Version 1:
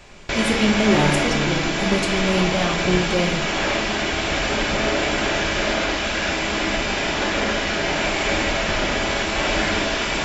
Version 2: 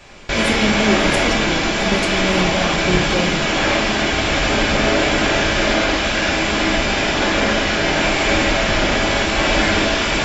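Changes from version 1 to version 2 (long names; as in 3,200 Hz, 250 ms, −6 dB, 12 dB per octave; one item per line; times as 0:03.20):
first sound: send +7.5 dB
second sound −11.5 dB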